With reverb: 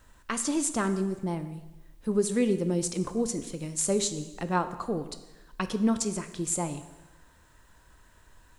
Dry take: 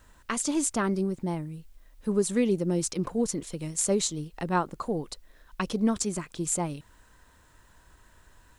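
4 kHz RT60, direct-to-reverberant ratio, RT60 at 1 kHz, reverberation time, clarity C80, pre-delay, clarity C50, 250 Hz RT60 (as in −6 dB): 1.0 s, 10.0 dB, 1.1 s, 1.1 s, 13.5 dB, 5 ms, 12.0 dB, 1.1 s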